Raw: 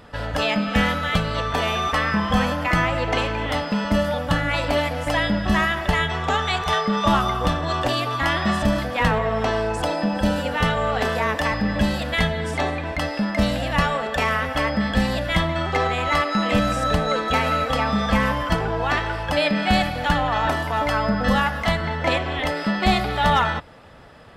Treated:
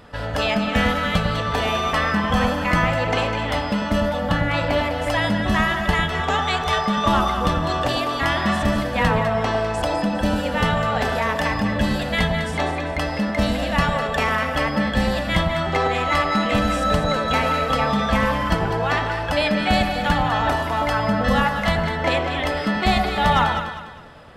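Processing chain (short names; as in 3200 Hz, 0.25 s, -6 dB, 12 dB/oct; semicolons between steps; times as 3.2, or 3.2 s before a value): 4–5.02 bell 9900 Hz -7 dB 1.5 oct; echo with dull and thin repeats by turns 0.101 s, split 1000 Hz, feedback 59%, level -4 dB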